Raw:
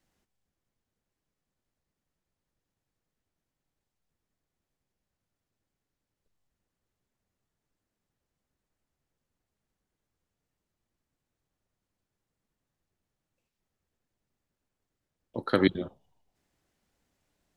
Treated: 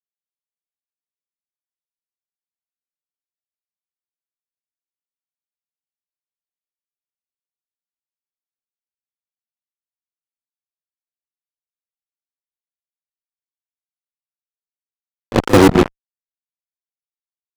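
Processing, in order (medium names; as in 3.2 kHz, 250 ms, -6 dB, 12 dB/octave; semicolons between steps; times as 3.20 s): low-pass that closes with the level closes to 610 Hz; fuzz box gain 40 dB, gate -35 dBFS; pre-echo 39 ms -14.5 dB; trim +8.5 dB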